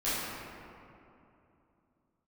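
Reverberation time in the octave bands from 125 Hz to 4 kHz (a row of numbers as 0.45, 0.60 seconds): 3.4, 3.4, 2.9, 2.7, 2.1, 1.3 seconds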